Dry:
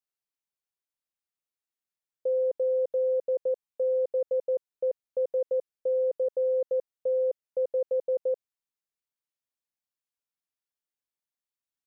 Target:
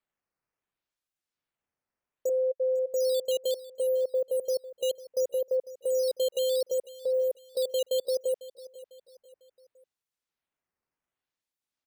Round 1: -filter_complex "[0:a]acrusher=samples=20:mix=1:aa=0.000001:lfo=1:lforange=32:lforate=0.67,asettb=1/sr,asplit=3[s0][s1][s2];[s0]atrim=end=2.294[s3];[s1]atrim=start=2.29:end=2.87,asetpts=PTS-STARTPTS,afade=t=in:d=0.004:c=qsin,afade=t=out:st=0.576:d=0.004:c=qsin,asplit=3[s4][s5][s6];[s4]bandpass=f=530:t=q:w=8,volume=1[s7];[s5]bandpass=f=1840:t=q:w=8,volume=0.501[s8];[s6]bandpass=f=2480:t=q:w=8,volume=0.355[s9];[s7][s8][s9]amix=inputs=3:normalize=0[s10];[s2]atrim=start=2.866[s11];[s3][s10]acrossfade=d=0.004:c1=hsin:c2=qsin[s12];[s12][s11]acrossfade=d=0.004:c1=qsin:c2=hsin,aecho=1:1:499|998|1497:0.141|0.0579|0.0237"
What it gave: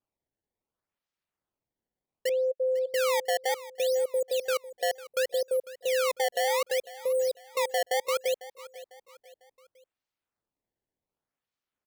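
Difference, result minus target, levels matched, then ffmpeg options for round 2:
decimation with a swept rate: distortion +11 dB
-filter_complex "[0:a]acrusher=samples=7:mix=1:aa=0.000001:lfo=1:lforange=11.2:lforate=0.67,asettb=1/sr,asplit=3[s0][s1][s2];[s0]atrim=end=2.294[s3];[s1]atrim=start=2.29:end=2.87,asetpts=PTS-STARTPTS,afade=t=in:d=0.004:c=qsin,afade=t=out:st=0.576:d=0.004:c=qsin,asplit=3[s4][s5][s6];[s4]bandpass=f=530:t=q:w=8,volume=1[s7];[s5]bandpass=f=1840:t=q:w=8,volume=0.501[s8];[s6]bandpass=f=2480:t=q:w=8,volume=0.355[s9];[s7][s8][s9]amix=inputs=3:normalize=0[s10];[s2]atrim=start=2.866[s11];[s3][s10]acrossfade=d=0.004:c1=hsin:c2=qsin[s12];[s12][s11]acrossfade=d=0.004:c1=qsin:c2=hsin,aecho=1:1:499|998|1497:0.141|0.0579|0.0237"

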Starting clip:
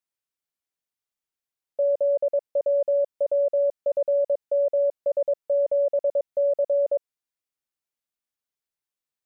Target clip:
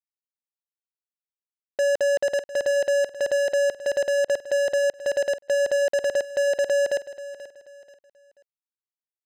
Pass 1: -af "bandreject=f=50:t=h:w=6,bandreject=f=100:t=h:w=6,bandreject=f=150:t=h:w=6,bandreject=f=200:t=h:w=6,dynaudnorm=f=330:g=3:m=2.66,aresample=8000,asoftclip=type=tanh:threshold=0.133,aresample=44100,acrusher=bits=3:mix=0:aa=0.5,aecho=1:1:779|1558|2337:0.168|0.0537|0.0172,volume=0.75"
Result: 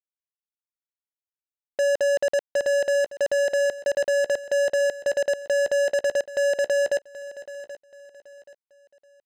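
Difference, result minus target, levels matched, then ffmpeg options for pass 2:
echo 295 ms late
-af "bandreject=f=50:t=h:w=6,bandreject=f=100:t=h:w=6,bandreject=f=150:t=h:w=6,bandreject=f=200:t=h:w=6,dynaudnorm=f=330:g=3:m=2.66,aresample=8000,asoftclip=type=tanh:threshold=0.133,aresample=44100,acrusher=bits=3:mix=0:aa=0.5,aecho=1:1:484|968|1452:0.168|0.0537|0.0172,volume=0.75"

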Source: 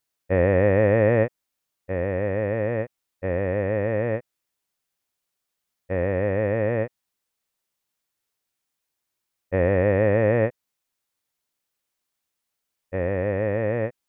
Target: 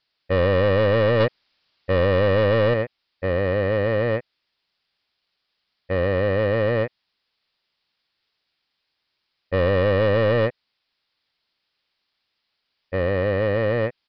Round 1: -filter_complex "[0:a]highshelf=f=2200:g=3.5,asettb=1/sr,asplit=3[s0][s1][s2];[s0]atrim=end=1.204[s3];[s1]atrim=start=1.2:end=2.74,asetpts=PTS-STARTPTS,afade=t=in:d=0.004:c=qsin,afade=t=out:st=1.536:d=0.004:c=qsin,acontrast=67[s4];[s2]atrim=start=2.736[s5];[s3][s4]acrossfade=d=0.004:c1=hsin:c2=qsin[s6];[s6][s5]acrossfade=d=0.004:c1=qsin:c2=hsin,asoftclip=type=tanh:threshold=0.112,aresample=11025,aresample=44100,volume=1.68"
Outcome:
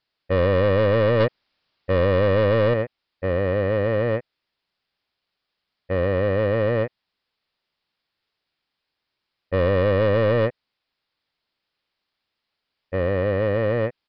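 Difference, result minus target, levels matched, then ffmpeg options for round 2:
4 kHz band -2.5 dB
-filter_complex "[0:a]highshelf=f=2200:g=11,asettb=1/sr,asplit=3[s0][s1][s2];[s0]atrim=end=1.204[s3];[s1]atrim=start=1.2:end=2.74,asetpts=PTS-STARTPTS,afade=t=in:d=0.004:c=qsin,afade=t=out:st=1.536:d=0.004:c=qsin,acontrast=67[s4];[s2]atrim=start=2.736[s5];[s3][s4]acrossfade=d=0.004:c1=hsin:c2=qsin[s6];[s6][s5]acrossfade=d=0.004:c1=qsin:c2=hsin,asoftclip=type=tanh:threshold=0.112,aresample=11025,aresample=44100,volume=1.68"

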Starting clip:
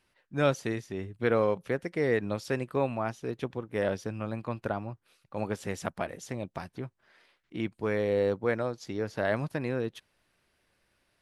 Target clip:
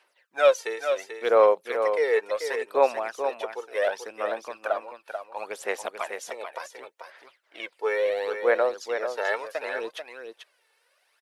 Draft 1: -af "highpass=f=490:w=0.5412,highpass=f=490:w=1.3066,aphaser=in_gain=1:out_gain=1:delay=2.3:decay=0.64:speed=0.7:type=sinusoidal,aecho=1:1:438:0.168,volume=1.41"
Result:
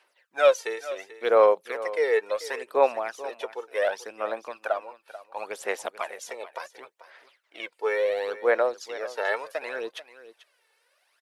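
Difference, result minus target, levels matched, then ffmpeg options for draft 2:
echo-to-direct -8 dB
-af "highpass=f=490:w=0.5412,highpass=f=490:w=1.3066,aphaser=in_gain=1:out_gain=1:delay=2.3:decay=0.64:speed=0.7:type=sinusoidal,aecho=1:1:438:0.422,volume=1.41"

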